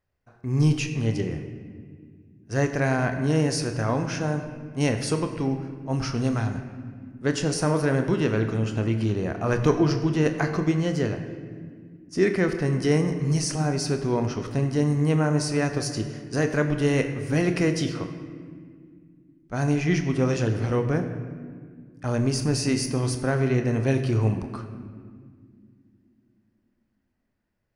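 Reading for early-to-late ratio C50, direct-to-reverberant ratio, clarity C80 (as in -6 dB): 8.5 dB, 6.0 dB, 9.5 dB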